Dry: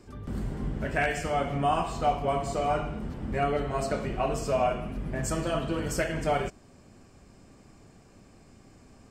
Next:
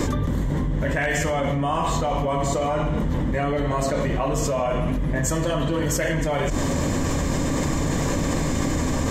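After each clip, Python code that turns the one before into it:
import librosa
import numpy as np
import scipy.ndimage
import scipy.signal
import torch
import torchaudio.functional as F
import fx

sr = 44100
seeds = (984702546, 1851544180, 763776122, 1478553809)

y = fx.ripple_eq(x, sr, per_octave=1.1, db=8)
y = fx.env_flatten(y, sr, amount_pct=100)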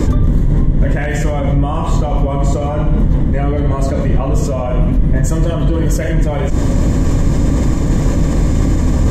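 y = fx.octave_divider(x, sr, octaves=2, level_db=1.0)
y = fx.low_shelf(y, sr, hz=440.0, db=10.5)
y = y * librosa.db_to_amplitude(-1.0)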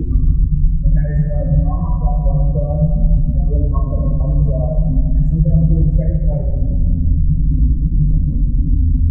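y = fx.spec_expand(x, sr, power=2.6)
y = fx.rev_fdn(y, sr, rt60_s=1.8, lf_ratio=1.0, hf_ratio=0.5, size_ms=38.0, drr_db=0.0)
y = y * librosa.db_to_amplitude(-4.0)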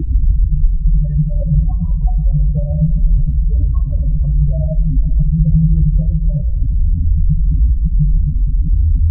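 y = fx.spec_expand(x, sr, power=2.0)
y = y + 10.0 ** (-22.0 / 20.0) * np.pad(y, (int(490 * sr / 1000.0), 0))[:len(y)]
y = y * librosa.db_to_amplitude(1.0)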